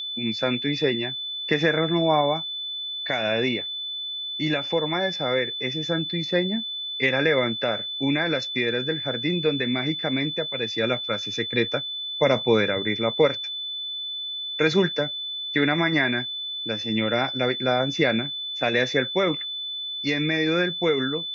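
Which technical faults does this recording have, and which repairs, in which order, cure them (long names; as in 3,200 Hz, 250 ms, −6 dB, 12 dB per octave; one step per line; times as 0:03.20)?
whistle 3,500 Hz −29 dBFS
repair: notch filter 3,500 Hz, Q 30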